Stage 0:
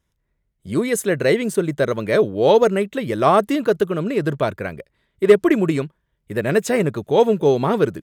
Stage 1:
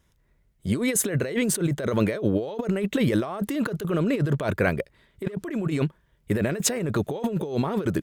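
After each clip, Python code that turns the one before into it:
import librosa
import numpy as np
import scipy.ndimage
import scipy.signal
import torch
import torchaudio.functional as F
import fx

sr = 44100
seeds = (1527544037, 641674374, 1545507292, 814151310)

y = fx.over_compress(x, sr, threshold_db=-26.0, ratio=-1.0)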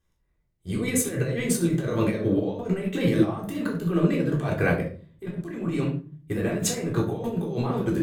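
y = fx.room_shoebox(x, sr, seeds[0], volume_m3=540.0, walls='furnished', distance_m=3.7)
y = fx.upward_expand(y, sr, threshold_db=-32.0, expansion=1.5)
y = y * librosa.db_to_amplitude(-3.5)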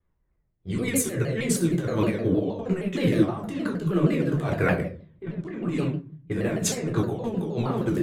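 y = fx.env_lowpass(x, sr, base_hz=1600.0, full_db=-22.0)
y = fx.vibrato_shape(y, sr, shape='saw_down', rate_hz=6.4, depth_cents=160.0)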